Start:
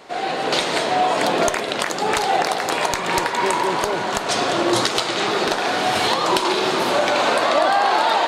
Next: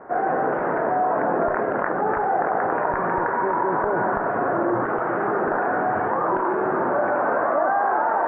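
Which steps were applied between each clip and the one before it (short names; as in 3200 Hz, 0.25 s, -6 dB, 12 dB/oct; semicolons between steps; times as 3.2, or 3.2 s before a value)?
in parallel at +1 dB: negative-ratio compressor -24 dBFS, ratio -1; on the sum: elliptic low-pass 1600 Hz, stop band 60 dB; gain -5.5 dB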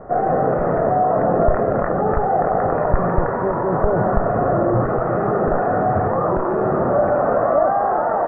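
tilt -4.5 dB/oct; comb 1.6 ms, depth 45%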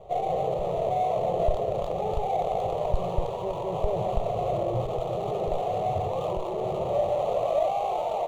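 median filter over 25 samples; fixed phaser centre 630 Hz, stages 4; gain -7 dB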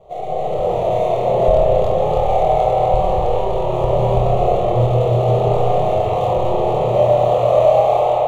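AGC gain up to 7.5 dB; flutter echo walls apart 4.3 m, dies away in 0.28 s; reverb RT60 3.5 s, pre-delay 33 ms, DRR -2.5 dB; gain -1.5 dB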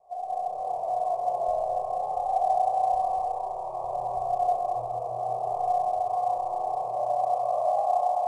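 vocal tract filter a; gain -3.5 dB; IMA ADPCM 88 kbps 22050 Hz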